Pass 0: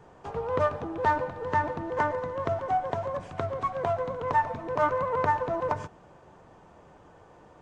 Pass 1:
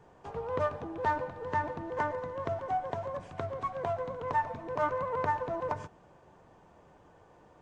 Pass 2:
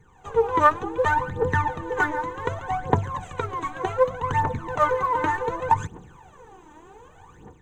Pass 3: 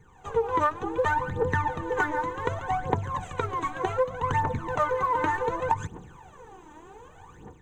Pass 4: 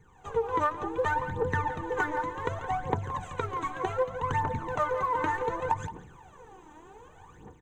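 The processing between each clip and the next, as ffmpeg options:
-af "bandreject=f=1.3k:w=20,volume=-5dB"
-af "superequalizer=8b=0.251:14b=0.282:15b=1.78,dynaudnorm=f=130:g=5:m=9.5dB,aphaser=in_gain=1:out_gain=1:delay=3.4:decay=0.77:speed=0.66:type=triangular,volume=-1.5dB"
-af "acompressor=threshold=-21dB:ratio=6"
-filter_complex "[0:a]asplit=2[a][b];[b]adelay=170,highpass=300,lowpass=3.4k,asoftclip=type=hard:threshold=-15dB,volume=-13dB[c];[a][c]amix=inputs=2:normalize=0,volume=-3dB"

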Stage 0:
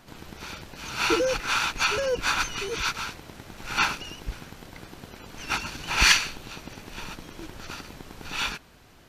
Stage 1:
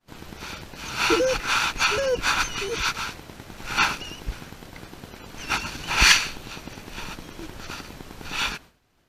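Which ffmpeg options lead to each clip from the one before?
-af "agate=range=-33dB:threshold=-43dB:ratio=3:detection=peak,volume=2.5dB"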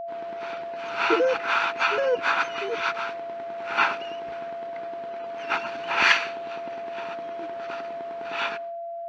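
-af "highpass=360,lowpass=2.2k,aeval=exprs='val(0)+0.0224*sin(2*PI*680*n/s)':c=same,volume=1.5dB"

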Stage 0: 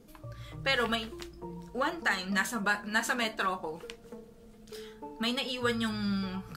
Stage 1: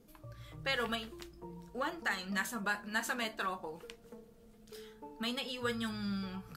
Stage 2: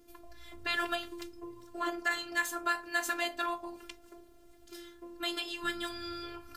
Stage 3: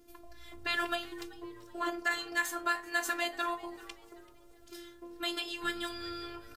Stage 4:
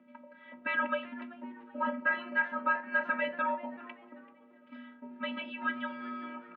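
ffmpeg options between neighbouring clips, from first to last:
-af "equalizer=f=13k:t=o:w=0.55:g=4.5,volume=-6dB"
-af "afftfilt=real='hypot(re,im)*cos(PI*b)':imag='0':win_size=512:overlap=0.75,volume=7dB"
-filter_complex "[0:a]asplit=4[a][b][c][d];[b]adelay=385,afreqshift=110,volume=-22dB[e];[c]adelay=770,afreqshift=220,volume=-30.4dB[f];[d]adelay=1155,afreqshift=330,volume=-38.8dB[g];[a][e][f][g]amix=inputs=4:normalize=0"
-filter_complex "[0:a]asplit=2[a][b];[b]asoftclip=type=tanh:threshold=-29.5dB,volume=-4dB[c];[a][c]amix=inputs=2:normalize=0,highpass=f=350:t=q:w=0.5412,highpass=f=350:t=q:w=1.307,lowpass=f=2.6k:t=q:w=0.5176,lowpass=f=2.6k:t=q:w=0.7071,lowpass=f=2.6k:t=q:w=1.932,afreqshift=-100"

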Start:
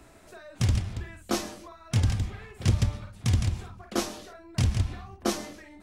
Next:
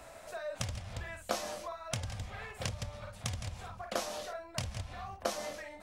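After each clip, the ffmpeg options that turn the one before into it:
-af "acompressor=threshold=-32dB:ratio=16,lowshelf=f=450:t=q:w=3:g=-6.5,volume=3dB"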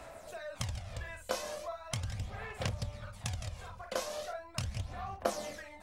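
-af "aphaser=in_gain=1:out_gain=1:delay=2:decay=0.43:speed=0.39:type=sinusoidal,volume=-2dB"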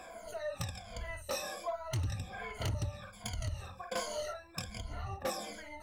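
-af "afftfilt=real='re*pow(10,19/40*sin(2*PI*(1.8*log(max(b,1)*sr/1024/100)/log(2)-(-1.3)*(pts-256)/sr)))':imag='im*pow(10,19/40*sin(2*PI*(1.8*log(max(b,1)*sr/1024/100)/log(2)-(-1.3)*(pts-256)/sr)))':win_size=1024:overlap=0.75,asoftclip=type=hard:threshold=-27.5dB,volume=-2.5dB"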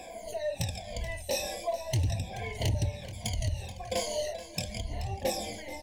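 -af "asuperstop=centerf=1300:order=4:qfactor=1.2,aecho=1:1:430:0.188,volume=6.5dB"

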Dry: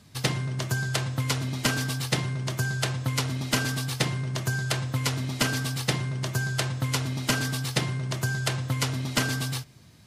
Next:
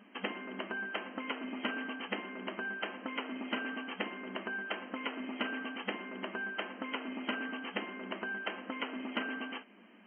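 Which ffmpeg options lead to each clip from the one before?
-af "afftfilt=real='re*between(b*sr/4096,190,3200)':imag='im*between(b*sr/4096,190,3200)':win_size=4096:overlap=0.75,acompressor=threshold=-42dB:ratio=2,volume=1.5dB"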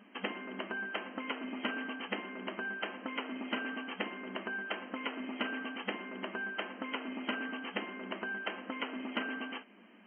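-af anull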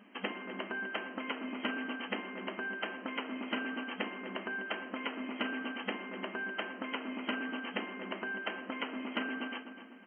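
-filter_complex "[0:a]asplit=2[a][b];[b]adelay=250,lowpass=f=2.1k:p=1,volume=-10dB,asplit=2[c][d];[d]adelay=250,lowpass=f=2.1k:p=1,volume=0.47,asplit=2[e][f];[f]adelay=250,lowpass=f=2.1k:p=1,volume=0.47,asplit=2[g][h];[h]adelay=250,lowpass=f=2.1k:p=1,volume=0.47,asplit=2[i][j];[j]adelay=250,lowpass=f=2.1k:p=1,volume=0.47[k];[a][c][e][g][i][k]amix=inputs=6:normalize=0"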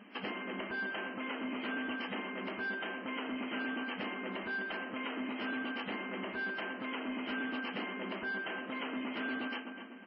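-af "alimiter=level_in=6dB:limit=-24dB:level=0:latency=1:release=27,volume=-6dB,asoftclip=type=tanh:threshold=-33.5dB,volume=3.5dB" -ar 16000 -c:a libmp3lame -b:a 16k

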